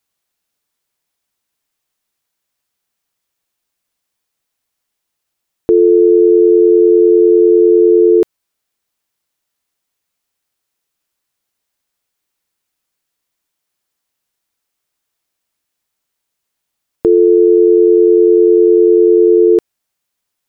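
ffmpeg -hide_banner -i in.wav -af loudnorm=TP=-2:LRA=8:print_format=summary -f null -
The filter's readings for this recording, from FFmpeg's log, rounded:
Input Integrated:     -9.0 LUFS
Input True Peak:      -1.7 dBTP
Input LRA:             8.7 LU
Input Threshold:     -19.1 LUFS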